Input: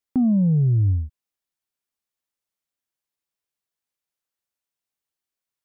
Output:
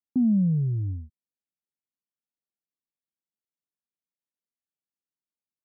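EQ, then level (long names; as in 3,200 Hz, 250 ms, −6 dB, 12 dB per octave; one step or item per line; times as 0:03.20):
resonant band-pass 220 Hz, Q 1.3
−2.5 dB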